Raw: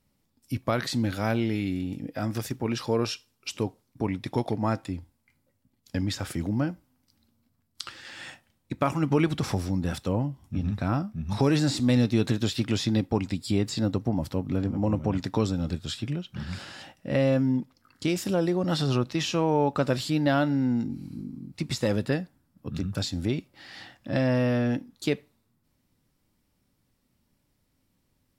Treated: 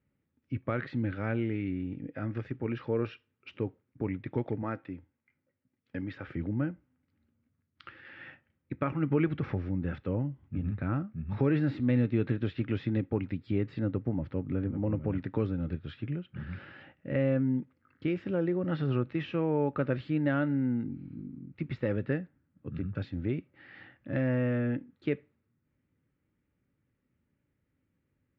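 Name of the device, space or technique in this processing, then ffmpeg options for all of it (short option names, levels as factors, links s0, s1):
bass cabinet: -filter_complex "[0:a]asettb=1/sr,asplit=3[s0][s1][s2];[s0]atrim=end=4.624[s3];[s1]atrim=start=4.62:end=6.27,asetpts=PTS-STARTPTS,afade=t=in:d=0.004:c=qsin,afade=t=out:st=1.646:d=0.004:c=qsin,highpass=f=230:p=1[s4];[s2]atrim=start=6.266[s5];[s3][s4]acrossfade=d=0.004:c1=hsin:c2=qsin[s6];[s6][s5]acrossfade=d=0.004:c1=qsin:c2=hsin,highpass=61,equalizer=f=210:t=q:w=4:g=-4,equalizer=f=710:t=q:w=4:g=-10,equalizer=f=1000:t=q:w=4:g=-9,lowpass=f=2300:w=0.5412,lowpass=f=2300:w=1.3066,volume=0.708"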